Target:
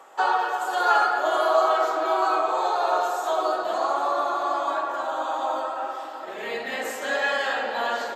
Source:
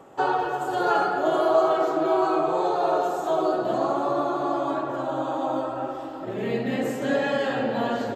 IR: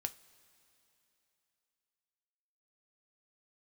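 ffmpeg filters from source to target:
-filter_complex "[0:a]highpass=900,asplit=2[s0][s1];[s1]equalizer=f=2800:w=4.6:g=-6.5[s2];[1:a]atrim=start_sample=2205,asetrate=26901,aresample=44100,lowshelf=f=180:g=7[s3];[s2][s3]afir=irnorm=-1:irlink=0,volume=0.841[s4];[s0][s4]amix=inputs=2:normalize=0"

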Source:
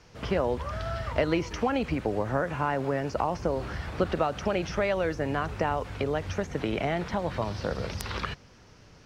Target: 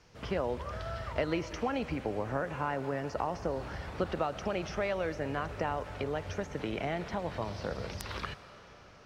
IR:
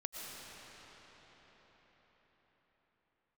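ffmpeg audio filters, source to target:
-filter_complex "[0:a]asplit=2[s0][s1];[1:a]atrim=start_sample=2205,lowshelf=f=250:g=-11[s2];[s1][s2]afir=irnorm=-1:irlink=0,volume=0.355[s3];[s0][s3]amix=inputs=2:normalize=0,volume=0.447"

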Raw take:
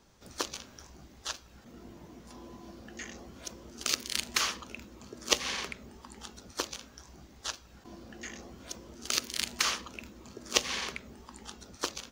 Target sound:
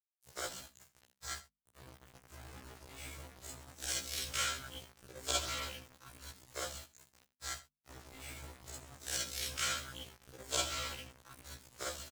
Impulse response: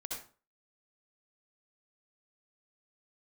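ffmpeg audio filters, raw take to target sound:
-filter_complex "[1:a]atrim=start_sample=2205,atrim=end_sample=6615,asetrate=74970,aresample=44100[s0];[0:a][s0]afir=irnorm=-1:irlink=0,acrusher=bits=7:mix=0:aa=0.000001,equalizer=f=76:t=o:w=1.5:g=12,aecho=1:1:80:0.15,asetrate=53981,aresample=44100,atempo=0.816958,bandreject=f=50:t=h:w=6,bandreject=f=100:t=h:w=6,bandreject=f=150:t=h:w=6,bandreject=f=200:t=h:w=6,bandreject=f=250:t=h:w=6,afftfilt=real='re*1.73*eq(mod(b,3),0)':imag='im*1.73*eq(mod(b,3),0)':win_size=2048:overlap=0.75,volume=1.26"

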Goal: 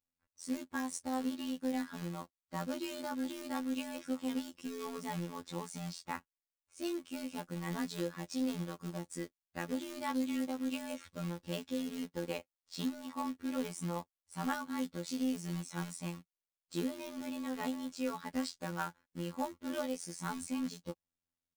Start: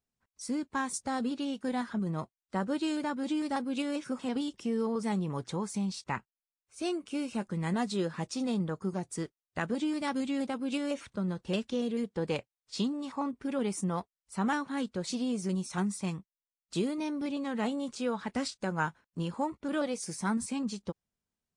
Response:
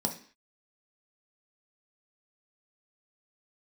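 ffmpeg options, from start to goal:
-af "acrusher=bits=3:mode=log:mix=0:aa=0.000001,aecho=1:1:3.6:0.45,afftfilt=real='hypot(re,im)*cos(PI*b)':imag='0':win_size=2048:overlap=0.75,volume=0.668"

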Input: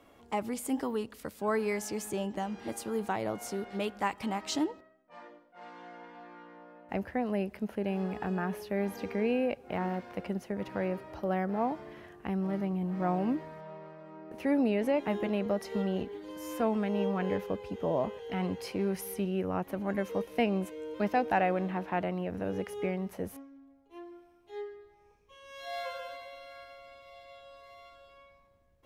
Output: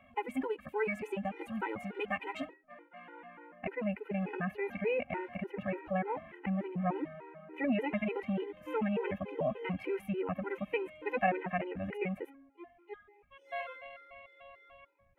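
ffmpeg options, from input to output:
-af "highshelf=f=3500:t=q:w=3:g=-13.5,atempo=1.9,afftfilt=real='re*gt(sin(2*PI*3.4*pts/sr)*(1-2*mod(floor(b*sr/1024/260),2)),0)':imag='im*gt(sin(2*PI*3.4*pts/sr)*(1-2*mod(floor(b*sr/1024/260),2)),0)':win_size=1024:overlap=0.75"

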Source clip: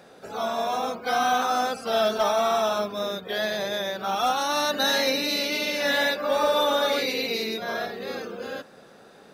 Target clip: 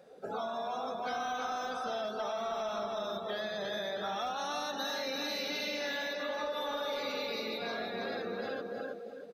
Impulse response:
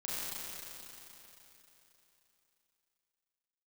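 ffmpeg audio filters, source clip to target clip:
-filter_complex "[0:a]aecho=1:1:320|640|960|1280|1600|1920:0.531|0.244|0.112|0.0517|0.0238|0.0109,asplit=2[s0][s1];[s1]volume=23.7,asoftclip=hard,volume=0.0422,volume=0.473[s2];[s0][s2]amix=inputs=2:normalize=0,tremolo=f=0.71:d=0.3,acontrast=87,asplit=2[s3][s4];[1:a]atrim=start_sample=2205[s5];[s4][s5]afir=irnorm=-1:irlink=0,volume=0.126[s6];[s3][s6]amix=inputs=2:normalize=0,afftdn=nr=16:nf=-29,acompressor=threshold=0.0501:ratio=6,volume=0.376"

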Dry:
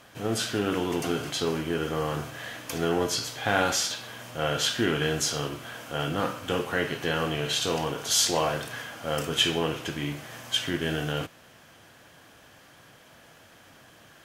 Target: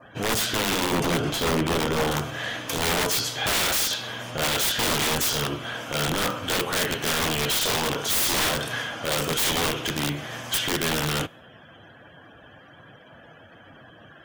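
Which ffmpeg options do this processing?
-filter_complex "[0:a]aeval=exprs='(mod(14.1*val(0)+1,2)-1)/14.1':c=same,adynamicequalizer=threshold=0.00316:dfrequency=3400:dqfactor=6.8:tfrequency=3400:tqfactor=6.8:attack=5:release=100:ratio=0.375:range=2:mode=boostabove:tftype=bell,alimiter=level_in=1.06:limit=0.0631:level=0:latency=1:release=147,volume=0.944,asettb=1/sr,asplit=3[s0][s1][s2];[s0]atrim=end=0.924[s3];[s1]atrim=start=0.92:end=2.11,asetpts=PTS-STARTPTS,afade=t=in:d=0.004:c=qsin,afade=t=out:st=1.186:d=0.004:c=qsin,tiltshelf=f=1300:g=4[s4];[s2]atrim=start=2.106[s5];[s3][s4]acrossfade=d=0.004:c1=hsin:c2=qsin[s6];[s6][s5]acrossfade=d=0.004:c1=qsin:c2=hsin,afftdn=nr=28:nf=-54,volume=2.37"

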